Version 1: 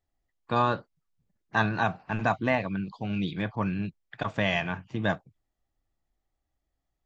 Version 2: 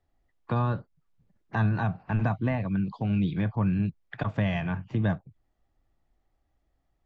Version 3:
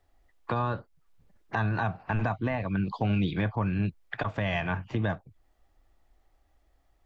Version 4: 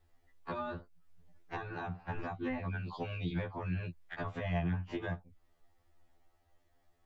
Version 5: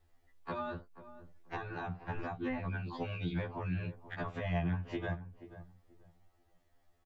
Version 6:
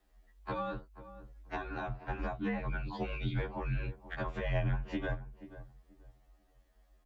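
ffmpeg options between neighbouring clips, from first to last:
-filter_complex "[0:a]aemphasis=mode=reproduction:type=75kf,acrossover=split=180[a][b];[b]acompressor=threshold=-44dB:ratio=2.5[c];[a][c]amix=inputs=2:normalize=0,volume=8dB"
-af "equalizer=f=160:w=0.84:g=-9.5,alimiter=level_in=2dB:limit=-24dB:level=0:latency=1:release=416,volume=-2dB,volume=8dB"
-filter_complex "[0:a]acrossover=split=420|1300[a][b][c];[a]acompressor=threshold=-32dB:ratio=4[d];[b]acompressor=threshold=-41dB:ratio=4[e];[c]acompressor=threshold=-44dB:ratio=4[f];[d][e][f]amix=inputs=3:normalize=0,afftfilt=real='re*2*eq(mod(b,4),0)':imag='im*2*eq(mod(b,4),0)':win_size=2048:overlap=0.75"
-filter_complex "[0:a]asplit=2[a][b];[b]adelay=483,lowpass=f=980:p=1,volume=-13dB,asplit=2[c][d];[d]adelay=483,lowpass=f=980:p=1,volume=0.23,asplit=2[e][f];[f]adelay=483,lowpass=f=980:p=1,volume=0.23[g];[a][c][e][g]amix=inputs=4:normalize=0"
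-af "afreqshift=-50,volume=2dB"

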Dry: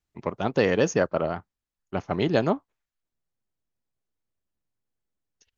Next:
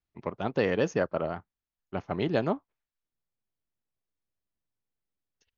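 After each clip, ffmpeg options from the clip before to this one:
-af "lowpass=4.5k,volume=-4.5dB"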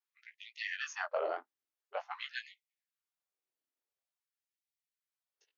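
-af "flanger=delay=15.5:depth=6.4:speed=0.41,afftfilt=real='re*gte(b*sr/1024,230*pow(1900/230,0.5+0.5*sin(2*PI*0.48*pts/sr)))':imag='im*gte(b*sr/1024,230*pow(1900/230,0.5+0.5*sin(2*PI*0.48*pts/sr)))':win_size=1024:overlap=0.75,volume=1dB"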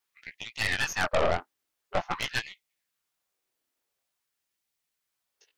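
-af "aeval=exprs='0.0891*(cos(1*acos(clip(val(0)/0.0891,-1,1)))-cos(1*PI/2))+0.0178*(cos(5*acos(clip(val(0)/0.0891,-1,1)))-cos(5*PI/2))+0.0224*(cos(8*acos(clip(val(0)/0.0891,-1,1)))-cos(8*PI/2))':c=same,volume=5dB"

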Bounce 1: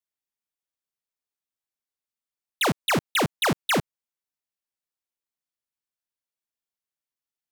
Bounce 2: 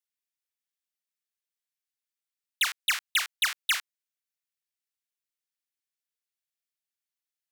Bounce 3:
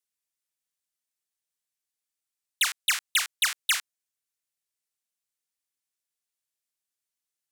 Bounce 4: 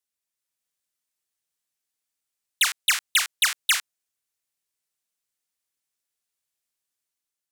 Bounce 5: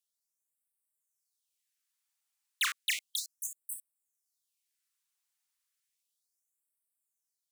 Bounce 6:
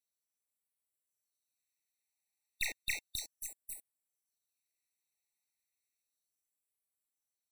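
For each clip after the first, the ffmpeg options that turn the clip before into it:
-af "highpass=f=1.5k:w=0.5412,highpass=f=1.5k:w=1.3066"
-af "equalizer=f=8.6k:t=o:w=1.3:g=6"
-af "dynaudnorm=f=130:g=7:m=3.5dB"
-af "asoftclip=type=tanh:threshold=-26.5dB,afftfilt=real='re*gte(b*sr/1024,690*pow(7900/690,0.5+0.5*sin(2*PI*0.33*pts/sr)))':imag='im*gte(b*sr/1024,690*pow(7900/690,0.5+0.5*sin(2*PI*0.33*pts/sr)))':win_size=1024:overlap=0.75"
-af "aeval=exprs='(tanh(20*val(0)+0.6)-tanh(0.6))/20':c=same,afftfilt=real='re*eq(mod(floor(b*sr/1024/910),2),0)':imag='im*eq(mod(floor(b*sr/1024/910),2),0)':win_size=1024:overlap=0.75,volume=1dB"

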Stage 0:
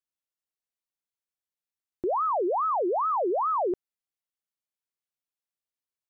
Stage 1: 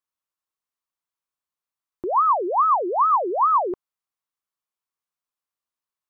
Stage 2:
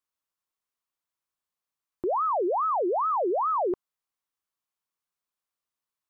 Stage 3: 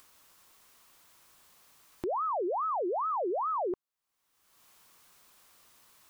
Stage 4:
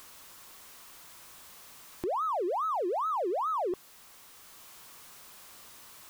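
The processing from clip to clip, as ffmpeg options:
-af "equalizer=f=1.1k:t=o:w=0.68:g=10.5"
-af "alimiter=limit=-22.5dB:level=0:latency=1"
-af "acompressor=mode=upward:threshold=-29dB:ratio=2.5,volume=-5.5dB"
-af "aeval=exprs='val(0)+0.5*0.00447*sgn(val(0))':c=same"

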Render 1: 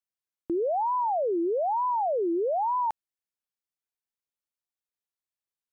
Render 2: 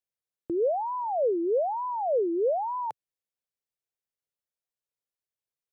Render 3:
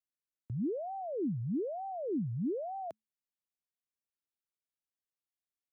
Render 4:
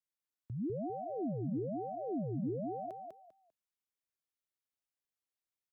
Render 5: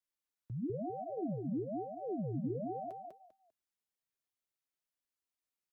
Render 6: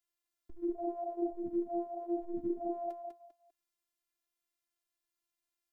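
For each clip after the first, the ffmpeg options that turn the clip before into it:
-af "equalizer=f=125:t=o:w=1:g=7,equalizer=f=250:t=o:w=1:g=-4,equalizer=f=500:t=o:w=1:g=8,equalizer=f=1k:t=o:w=1:g=-3,volume=-3.5dB"
-af "afreqshift=-220,volume=-8.5dB"
-af "aecho=1:1:198|396|594:0.631|0.151|0.0363,volume=-3.5dB"
-af "flanger=delay=2.9:depth=5.4:regen=-44:speed=0.57:shape=sinusoidal,volume=3dB"
-af "afftfilt=real='hypot(re,im)*cos(PI*b)':imag='0':win_size=512:overlap=0.75,volume=6dB"

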